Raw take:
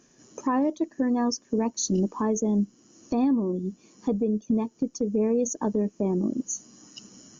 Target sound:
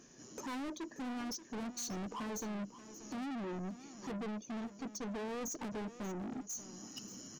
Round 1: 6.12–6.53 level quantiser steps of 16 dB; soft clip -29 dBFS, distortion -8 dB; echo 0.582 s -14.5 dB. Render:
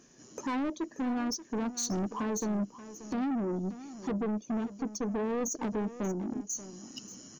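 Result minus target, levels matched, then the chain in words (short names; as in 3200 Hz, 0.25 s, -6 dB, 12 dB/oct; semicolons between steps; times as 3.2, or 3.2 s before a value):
soft clip: distortion -5 dB
6.12–6.53 level quantiser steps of 16 dB; soft clip -39.5 dBFS, distortion -3 dB; echo 0.582 s -14.5 dB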